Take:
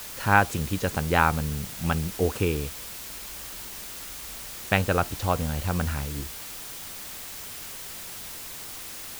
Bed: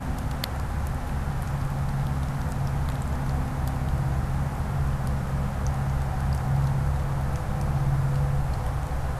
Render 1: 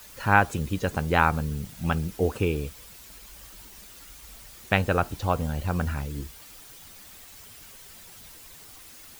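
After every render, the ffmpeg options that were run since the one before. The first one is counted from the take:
-af "afftdn=nr=10:nf=-39"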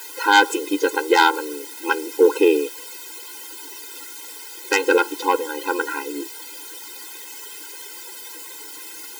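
-af "aeval=exprs='0.708*sin(PI/2*3.16*val(0)/0.708)':c=same,afftfilt=real='re*eq(mod(floor(b*sr/1024/270),2),1)':imag='im*eq(mod(floor(b*sr/1024/270),2),1)':win_size=1024:overlap=0.75"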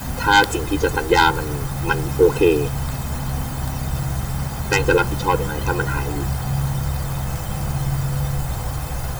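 -filter_complex "[1:a]volume=2dB[a];[0:a][a]amix=inputs=2:normalize=0"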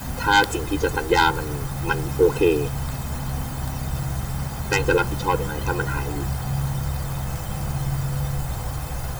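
-af "volume=-3dB"

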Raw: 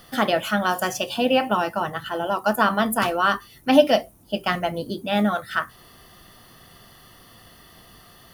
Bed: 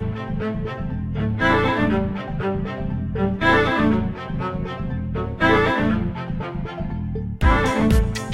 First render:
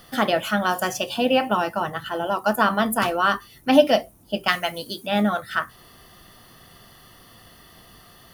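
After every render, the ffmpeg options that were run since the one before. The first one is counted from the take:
-filter_complex "[0:a]asettb=1/sr,asplit=3[a][b][c];[a]atrim=end=4.484[d];[b]atrim=start=4.48:end=5.07,asetpts=PTS-STARTPTS,afade=t=in:d=0.004:c=qsin,afade=t=out:st=0.586:d=0.004:c=qsin,tiltshelf=f=970:g=-8.5[e];[c]atrim=start=5.066[f];[d][e]acrossfade=d=0.004:c1=hsin:c2=qsin[g];[g][f]acrossfade=d=0.004:c1=qsin:c2=hsin"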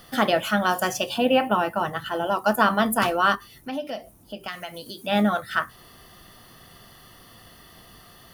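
-filter_complex "[0:a]asettb=1/sr,asplit=3[a][b][c];[a]atrim=end=1.184[d];[b]atrim=start=1.18:end=1.8,asetpts=PTS-STARTPTS,afade=t=in:d=0.004:c=qsin,afade=t=out:st=0.616:d=0.004:c=qsin,equalizer=f=5.3k:t=o:w=0.7:g=-11[e];[c]atrim=start=1.796[f];[d][e]acrossfade=d=0.004:c1=hsin:c2=qsin[g];[g][f]acrossfade=d=0.004:c1=qsin:c2=hsin,asettb=1/sr,asplit=3[h][i][j];[h]atrim=end=3.354[k];[i]atrim=start=3.35:end=5.04,asetpts=PTS-STARTPTS,afade=t=in:d=0.004:c=qsin,afade=t=out:st=1.686:d=0.004:c=qsin,acompressor=threshold=-35dB:ratio=2.5:attack=3.2:release=140:knee=1:detection=peak[l];[j]atrim=start=5.036[m];[k][l]acrossfade=d=0.004:c1=hsin:c2=qsin[n];[n][m]acrossfade=d=0.004:c1=qsin:c2=hsin"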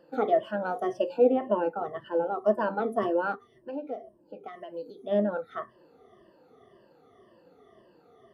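-af "afftfilt=real='re*pow(10,18/40*sin(2*PI*(1.3*log(max(b,1)*sr/1024/100)/log(2)-(-1.9)*(pts-256)/sr)))':imag='im*pow(10,18/40*sin(2*PI*(1.3*log(max(b,1)*sr/1024/100)/log(2)-(-1.9)*(pts-256)/sr)))':win_size=1024:overlap=0.75,bandpass=f=440:t=q:w=2.5:csg=0"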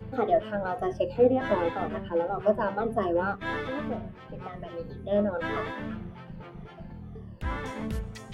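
-filter_complex "[1:a]volume=-16dB[a];[0:a][a]amix=inputs=2:normalize=0"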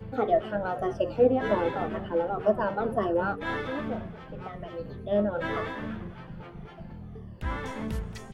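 -filter_complex "[0:a]asplit=6[a][b][c][d][e][f];[b]adelay=224,afreqshift=-52,volume=-16dB[g];[c]adelay=448,afreqshift=-104,volume=-21.2dB[h];[d]adelay=672,afreqshift=-156,volume=-26.4dB[i];[e]adelay=896,afreqshift=-208,volume=-31.6dB[j];[f]adelay=1120,afreqshift=-260,volume=-36.8dB[k];[a][g][h][i][j][k]amix=inputs=6:normalize=0"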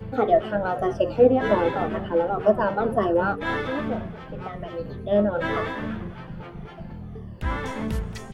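-af "volume=5dB"

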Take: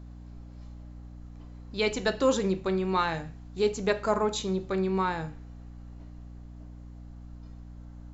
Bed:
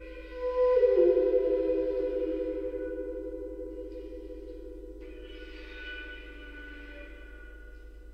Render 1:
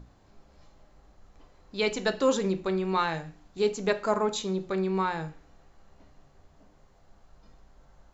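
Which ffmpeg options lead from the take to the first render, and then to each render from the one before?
-af "bandreject=f=60:t=h:w=6,bandreject=f=120:t=h:w=6,bandreject=f=180:t=h:w=6,bandreject=f=240:t=h:w=6,bandreject=f=300:t=h:w=6,bandreject=f=360:t=h:w=6"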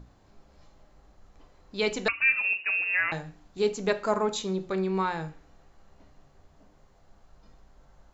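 -filter_complex "[0:a]asettb=1/sr,asplit=3[a][b][c];[a]atrim=end=2.084[d];[b]atrim=start=2.08:end=3.12,asetpts=PTS-STARTPTS,afade=t=in:d=0.004:c=qsin,afade=t=out:st=1.036:d=0.004:c=qsin,lowpass=f=2.5k:t=q:w=0.5098,lowpass=f=2.5k:t=q:w=0.6013,lowpass=f=2.5k:t=q:w=0.9,lowpass=f=2.5k:t=q:w=2.563,afreqshift=-2900[e];[c]atrim=start=3.116[f];[d][e]acrossfade=d=0.004:c1=hsin:c2=qsin[g];[g][f]acrossfade=d=0.004:c1=qsin:c2=hsin"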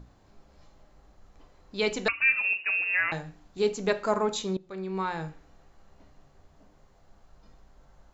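-filter_complex "[0:a]asplit=2[a][b];[a]atrim=end=4.57,asetpts=PTS-STARTPTS,afade=t=out:st=4.566:d=0.004:c=hsin:silence=0.105925[c];[b]atrim=start=4.57,asetpts=PTS-STARTPTS,afade=t=in:d=0.67:silence=0.105925[d];[c][d]concat=n=2:v=0:a=1"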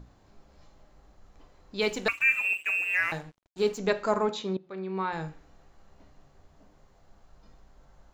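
-filter_complex "[0:a]asplit=3[a][b][c];[a]afade=t=out:st=1.8:d=0.02[d];[b]aeval=exprs='sgn(val(0))*max(abs(val(0))-0.00422,0)':c=same,afade=t=in:st=1.8:d=0.02,afade=t=out:st=3.78:d=0.02[e];[c]afade=t=in:st=3.78:d=0.02[f];[d][e][f]amix=inputs=3:normalize=0,asettb=1/sr,asplit=3[g][h][i];[g]atrim=end=4.314[j];[h]atrim=start=4.31:end=5.13,asetpts=PTS-STARTPTS,afade=t=in:d=0.004:c=qsin,afade=t=out:st=0.816:d=0.004:c=qsin,highpass=140,lowpass=3.9k[k];[i]atrim=start=5.126[l];[j][k]acrossfade=d=0.004:c1=hsin:c2=qsin[m];[m][l]acrossfade=d=0.004:c1=qsin:c2=hsin"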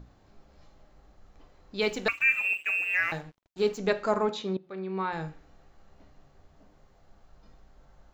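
-af "equalizer=f=10k:t=o:w=0.63:g=-10,bandreject=f=990:w=17"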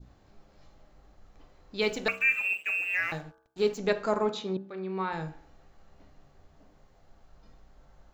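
-af "bandreject=f=64.89:t=h:w=4,bandreject=f=129.78:t=h:w=4,bandreject=f=194.67:t=h:w=4,bandreject=f=259.56:t=h:w=4,bandreject=f=324.45:t=h:w=4,bandreject=f=389.34:t=h:w=4,bandreject=f=454.23:t=h:w=4,bandreject=f=519.12:t=h:w=4,bandreject=f=584.01:t=h:w=4,bandreject=f=648.9:t=h:w=4,bandreject=f=713.79:t=h:w=4,bandreject=f=778.68:t=h:w=4,bandreject=f=843.57:t=h:w=4,bandreject=f=908.46:t=h:w=4,bandreject=f=973.35:t=h:w=4,bandreject=f=1.03824k:t=h:w=4,bandreject=f=1.10313k:t=h:w=4,bandreject=f=1.16802k:t=h:w=4,bandreject=f=1.23291k:t=h:w=4,bandreject=f=1.2978k:t=h:w=4,bandreject=f=1.36269k:t=h:w=4,bandreject=f=1.42758k:t=h:w=4,bandreject=f=1.49247k:t=h:w=4,bandreject=f=1.55736k:t=h:w=4,bandreject=f=1.62225k:t=h:w=4,bandreject=f=1.68714k:t=h:w=4,adynamicequalizer=threshold=0.00891:dfrequency=1500:dqfactor=0.74:tfrequency=1500:tqfactor=0.74:attack=5:release=100:ratio=0.375:range=1.5:mode=cutabove:tftype=bell"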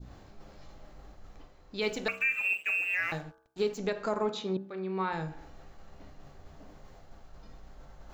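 -af "areverse,acompressor=mode=upward:threshold=-40dB:ratio=2.5,areverse,alimiter=limit=-20dB:level=0:latency=1:release=170"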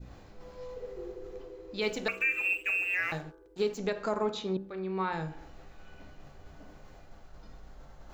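-filter_complex "[1:a]volume=-19.5dB[a];[0:a][a]amix=inputs=2:normalize=0"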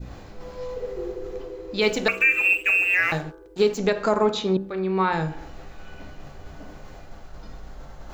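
-af "volume=10dB"

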